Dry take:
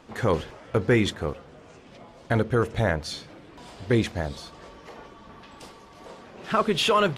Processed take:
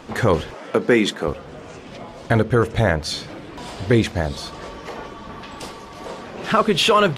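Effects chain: in parallel at +2 dB: compression, threshold -35 dBFS, peak gain reduction 17.5 dB; 0.54–1.28 s: on the sum: high-pass 180 Hz 24 dB/octave; trim +4 dB

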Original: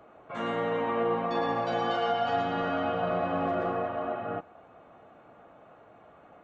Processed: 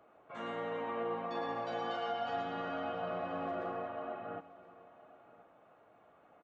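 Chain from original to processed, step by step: bass shelf 180 Hz -6.5 dB; on a send: delay 1025 ms -19.5 dB; on the sum: trim -8.5 dB

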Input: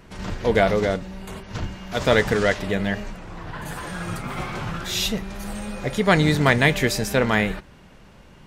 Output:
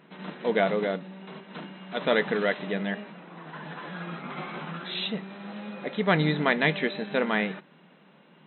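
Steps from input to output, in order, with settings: FFT band-pass 150–4100 Hz; trim -5.5 dB

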